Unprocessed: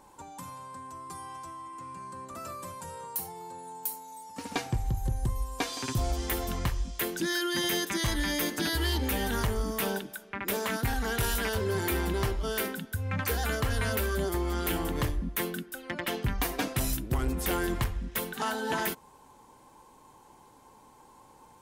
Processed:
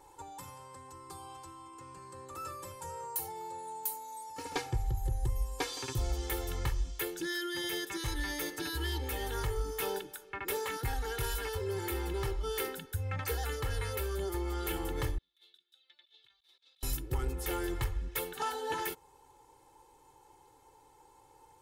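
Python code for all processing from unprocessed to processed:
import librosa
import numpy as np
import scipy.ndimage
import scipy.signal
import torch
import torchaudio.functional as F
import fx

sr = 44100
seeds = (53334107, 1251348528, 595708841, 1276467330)

y = fx.chain(x, sr, fx.bandpass_q(hz=3700.0, q=20.0),
    fx.over_compress(threshold_db=-58.0, ratio=-0.5), at=(15.18, 16.83))
y = y + 0.99 * np.pad(y, (int(2.3 * sr / 1000.0), 0))[:len(y)]
y = fx.rider(y, sr, range_db=3, speed_s=0.5)
y = y * 10.0 ** (-8.0 / 20.0)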